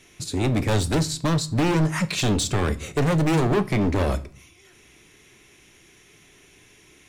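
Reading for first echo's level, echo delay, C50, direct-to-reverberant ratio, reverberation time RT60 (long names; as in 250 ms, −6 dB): no echo audible, no echo audible, 19.0 dB, 11.5 dB, 0.45 s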